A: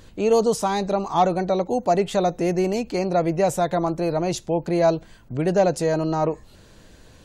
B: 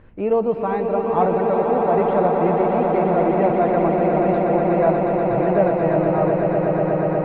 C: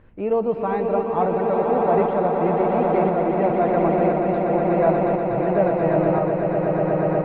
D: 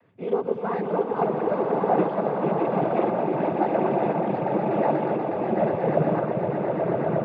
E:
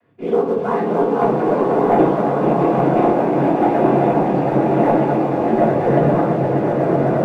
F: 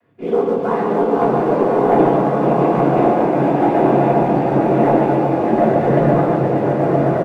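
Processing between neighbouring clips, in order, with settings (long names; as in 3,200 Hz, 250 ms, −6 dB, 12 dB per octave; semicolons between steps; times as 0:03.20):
inverse Chebyshev low-pass filter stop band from 5,600 Hz, stop band 50 dB; flanger 0.56 Hz, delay 8.4 ms, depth 5.1 ms, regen −77%; echo that builds up and dies away 121 ms, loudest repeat 8, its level −7.5 dB; level +3.5 dB
shaped tremolo saw up 0.97 Hz, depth 35%
cochlear-implant simulation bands 16; level −3.5 dB
leveller curve on the samples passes 1; rectangular room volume 270 cubic metres, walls furnished, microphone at 3.2 metres; level −2.5 dB
single-tap delay 144 ms −5.5 dB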